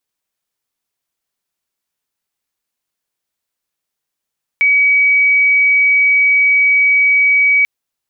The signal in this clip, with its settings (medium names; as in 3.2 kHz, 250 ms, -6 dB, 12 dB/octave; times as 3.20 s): tone sine 2.27 kHz -8 dBFS 3.04 s